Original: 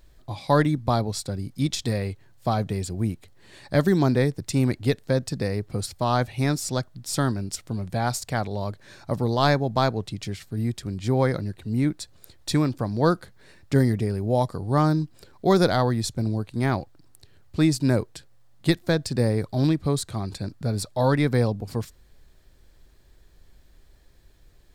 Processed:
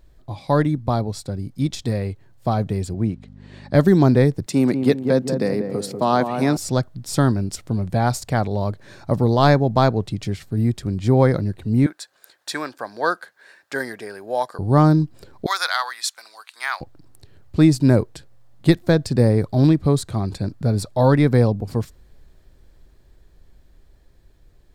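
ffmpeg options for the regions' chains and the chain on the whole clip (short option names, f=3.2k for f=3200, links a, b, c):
-filter_complex "[0:a]asettb=1/sr,asplit=3[a][b][c];[a]atrim=end=2.944[d];[b]atrim=start=2.94:end=3.74,asetpts=PTS-STARTPTS,afade=t=in:d=0.004:c=qsin,afade=t=out:st=0.796:d=0.004:c=qsin,aeval=exprs='val(0)+0.00891*(sin(2*PI*50*n/s)+sin(2*PI*2*50*n/s)/2+sin(2*PI*3*50*n/s)/3+sin(2*PI*4*50*n/s)/4+sin(2*PI*5*50*n/s)/5)':c=same,highpass=100,lowpass=5.6k[e];[c]atrim=start=3.736[f];[d][e]acrossfade=d=0.004:c1=hsin:c2=qsin[g];[g][f]acrossfade=d=0.004:c1=qsin:c2=hsin,asettb=1/sr,asplit=3[h][i][j];[h]atrim=end=4.464[k];[i]atrim=start=4.46:end=6.57,asetpts=PTS-STARTPTS,afade=t=in:d=0.004:c=qsin,afade=t=out:st=2.106:d=0.004:c=qsin,highpass=f=170:w=0.5412,highpass=f=170:w=1.3066,asplit=2[l][m];[m]adelay=192,lowpass=f=1k:p=1,volume=-6dB,asplit=2[n][o];[o]adelay=192,lowpass=f=1k:p=1,volume=0.48,asplit=2[p][q];[q]adelay=192,lowpass=f=1k:p=1,volume=0.48,asplit=2[r][s];[s]adelay=192,lowpass=f=1k:p=1,volume=0.48,asplit=2[t][u];[u]adelay=192,lowpass=f=1k:p=1,volume=0.48,asplit=2[v][w];[w]adelay=192,lowpass=f=1k:p=1,volume=0.48[x];[l][n][p][r][t][v][x]amix=inputs=7:normalize=0,atrim=end_sample=93051[y];[j]atrim=start=6.566[z];[k][y]acrossfade=d=0.004:c1=hsin:c2=qsin[aa];[aa][z]acrossfade=d=0.004:c1=qsin:c2=hsin,asettb=1/sr,asplit=3[ab][ac][ad];[ab]atrim=end=11.864[ae];[ac]atrim=start=11.86:end=14.59,asetpts=PTS-STARTPTS,afade=t=in:d=0.004:c=qsin,afade=t=out:st=2.726:d=0.004:c=qsin,highpass=740,equalizer=f=1.6k:t=o:w=0.23:g=10.5[af];[ad]atrim=start=14.586[ag];[ae][af]acrossfade=d=0.004:c1=hsin:c2=qsin[ah];[ah][ag]acrossfade=d=0.004:c1=qsin:c2=hsin,asettb=1/sr,asplit=3[ai][aj][ak];[ai]atrim=end=15.464[al];[aj]atrim=start=15.46:end=16.81,asetpts=PTS-STARTPTS,afade=t=in:d=0.004:c=qsin,afade=t=out:st=1.346:d=0.004:c=qsin,highpass=f=1.2k:w=0.5412,highpass=f=1.2k:w=1.3066,acontrast=38[am];[ak]atrim=start=16.806[an];[al][am]acrossfade=d=0.004:c1=hsin:c2=qsin[ao];[ao][an]acrossfade=d=0.004:c1=qsin:c2=hsin,tiltshelf=f=1.3k:g=3.5,dynaudnorm=f=460:g=13:m=11.5dB,volume=-1dB"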